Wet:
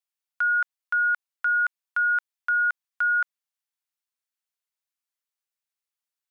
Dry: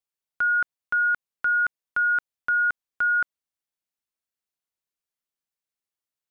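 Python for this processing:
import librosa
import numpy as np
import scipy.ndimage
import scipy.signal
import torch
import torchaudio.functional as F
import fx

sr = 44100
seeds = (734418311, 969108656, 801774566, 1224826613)

y = scipy.signal.sosfilt(scipy.signal.butter(2, 860.0, 'highpass', fs=sr, output='sos'), x)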